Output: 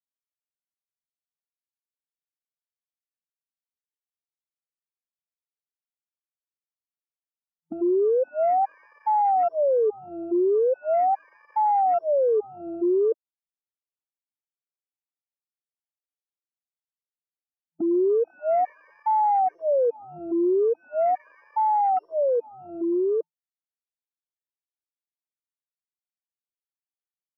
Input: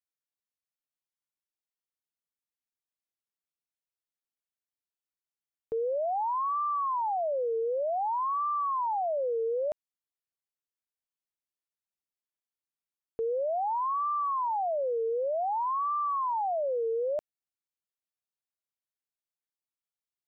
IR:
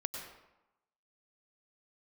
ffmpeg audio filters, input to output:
-af "aeval=exprs='if(lt(val(0),0),0.708*val(0),val(0))':channel_layout=same,afftfilt=real='re*between(b*sr/4096,220,1200)':imag='im*between(b*sr/4096,220,1200)':win_size=4096:overlap=0.75,afwtdn=0.00631,dynaudnorm=framelen=550:gausssize=13:maxgain=14dB,asetrate=32667,aresample=44100,afftfilt=real='re*gt(sin(2*PI*1.2*pts/sr)*(1-2*mod(floor(b*sr/1024/310),2)),0)':imag='im*gt(sin(2*PI*1.2*pts/sr)*(1-2*mod(floor(b*sr/1024/310),2)),0)':win_size=1024:overlap=0.75,volume=-3.5dB"

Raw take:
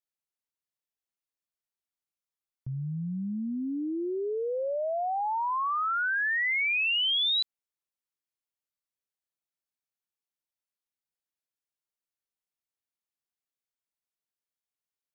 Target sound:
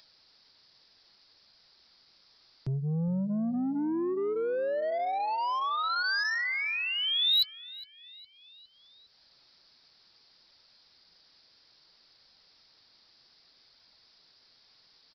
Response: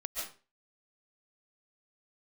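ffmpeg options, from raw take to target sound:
-filter_complex "[0:a]flanger=delay=1.2:depth=8.2:regen=-58:speed=0.65:shape=sinusoidal,acrossover=split=130[link_01][link_02];[link_02]alimiter=level_in=11.5dB:limit=-24dB:level=0:latency=1:release=152,volume=-11.5dB[link_03];[link_01][link_03]amix=inputs=2:normalize=0,acontrast=30,asoftclip=type=tanh:threshold=-34dB,aexciter=amount=5.3:drive=7.2:freq=4200,aresample=11025,aresample=44100,volume=27.5dB,asoftclip=hard,volume=-27.5dB,asplit=2[link_04][link_05];[link_05]adelay=410,lowpass=frequency=3500:poles=1,volume=-16.5dB,asplit=2[link_06][link_07];[link_07]adelay=410,lowpass=frequency=3500:poles=1,volume=0.41,asplit=2[link_08][link_09];[link_09]adelay=410,lowpass=frequency=3500:poles=1,volume=0.41,asplit=2[link_10][link_11];[link_11]adelay=410,lowpass=frequency=3500:poles=1,volume=0.41[link_12];[link_04][link_06][link_08][link_10][link_12]amix=inputs=5:normalize=0,acompressor=mode=upward:threshold=-51dB:ratio=2.5,volume=7dB"

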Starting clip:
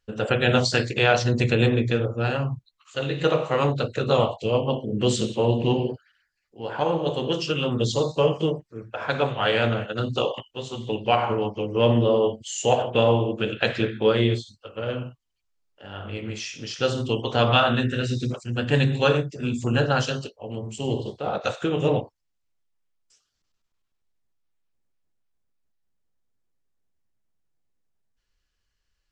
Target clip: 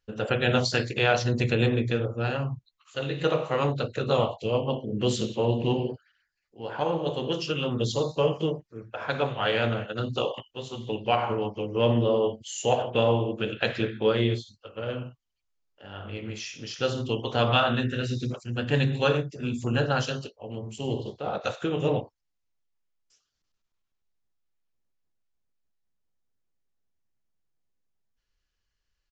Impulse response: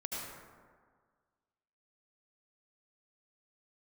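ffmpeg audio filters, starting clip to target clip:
-af "aresample=16000,aresample=44100,volume=-3.5dB"

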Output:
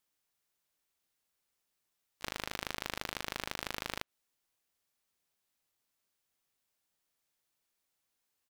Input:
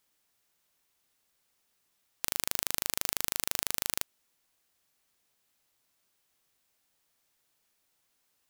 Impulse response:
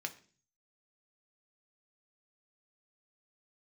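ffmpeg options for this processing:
-filter_complex "[0:a]acrossover=split=3200[link_01][link_02];[link_02]acompressor=threshold=-43dB:ratio=4:attack=1:release=60[link_03];[link_01][link_03]amix=inputs=2:normalize=0,asplit=4[link_04][link_05][link_06][link_07];[link_05]asetrate=52444,aresample=44100,atempo=0.840896,volume=-16dB[link_08];[link_06]asetrate=66075,aresample=44100,atempo=0.66742,volume=-10dB[link_09];[link_07]asetrate=88200,aresample=44100,atempo=0.5,volume=-9dB[link_10];[link_04][link_08][link_09][link_10]amix=inputs=4:normalize=0,aeval=exprs='0.141*(cos(1*acos(clip(val(0)/0.141,-1,1)))-cos(1*PI/2))+0.0224*(cos(4*acos(clip(val(0)/0.141,-1,1)))-cos(4*PI/2))+0.0158*(cos(7*acos(clip(val(0)/0.141,-1,1)))-cos(7*PI/2))':channel_layout=same,volume=5dB"

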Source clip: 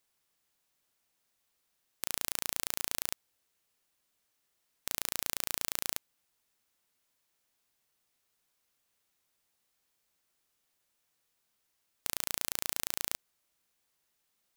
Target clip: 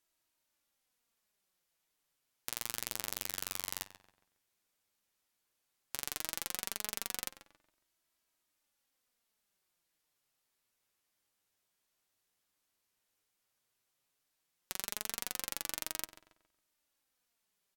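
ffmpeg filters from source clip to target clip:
ffmpeg -i in.wav -filter_complex "[0:a]asplit=2[link_01][link_02];[link_02]adelay=113,lowpass=frequency=3500:poles=1,volume=-12dB,asplit=2[link_03][link_04];[link_04]adelay=113,lowpass=frequency=3500:poles=1,volume=0.39,asplit=2[link_05][link_06];[link_06]adelay=113,lowpass=frequency=3500:poles=1,volume=0.39,asplit=2[link_07][link_08];[link_08]adelay=113,lowpass=frequency=3500:poles=1,volume=0.39[link_09];[link_01][link_03][link_05][link_07][link_09]amix=inputs=5:normalize=0,flanger=delay=2.5:depth=6.2:regen=45:speed=0.15:shape=sinusoidal,asetrate=36162,aresample=44100" out.wav

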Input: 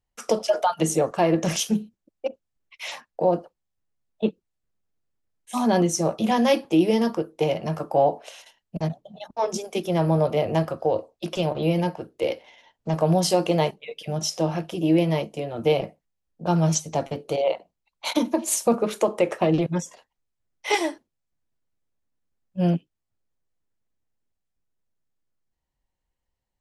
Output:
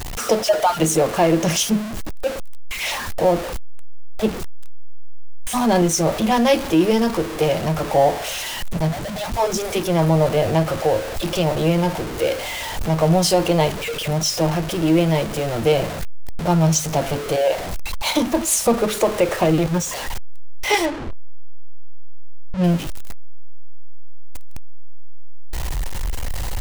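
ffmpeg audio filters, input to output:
ffmpeg -i in.wav -filter_complex "[0:a]aeval=exprs='val(0)+0.5*0.0531*sgn(val(0))':channel_layout=same,asettb=1/sr,asplit=3[link_01][link_02][link_03];[link_01]atrim=end=20.854[link_04];[link_02]atrim=start=20.85:end=22.64,asetpts=PTS-STARTPTS,afade=type=in:duration=0.004:curve=qsin,afade=type=out:start_time=1.786:duration=0.004:curve=qsin,adynamicsmooth=sensitivity=3.5:basefreq=920[link_05];[link_03]atrim=start=22.636[link_06];[link_04][link_05]acrossfade=duration=0.004:curve1=hsin:curve2=qsin[link_07];[link_07][link_06]acrossfade=duration=0.004:curve1=qsin:curve2=hsin,asubboost=boost=2.5:cutoff=110,volume=3dB" out.wav

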